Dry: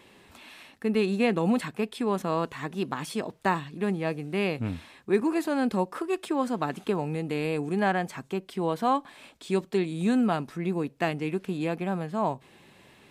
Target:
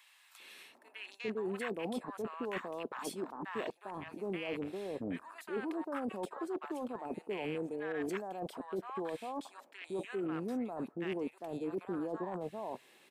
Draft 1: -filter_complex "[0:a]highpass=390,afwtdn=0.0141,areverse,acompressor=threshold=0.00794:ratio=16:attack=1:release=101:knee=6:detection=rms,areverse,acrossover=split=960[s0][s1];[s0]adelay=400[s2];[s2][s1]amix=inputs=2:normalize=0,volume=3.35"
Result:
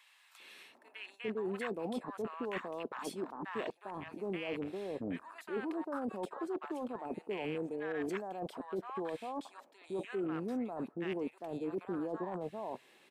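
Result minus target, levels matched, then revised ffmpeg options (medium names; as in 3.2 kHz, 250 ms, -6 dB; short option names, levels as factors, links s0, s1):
8 kHz band -3.5 dB
-filter_complex "[0:a]highpass=390,highshelf=f=7300:g=6.5,afwtdn=0.0141,areverse,acompressor=threshold=0.00794:ratio=16:attack=1:release=101:knee=6:detection=rms,areverse,acrossover=split=960[s0][s1];[s0]adelay=400[s2];[s2][s1]amix=inputs=2:normalize=0,volume=3.35"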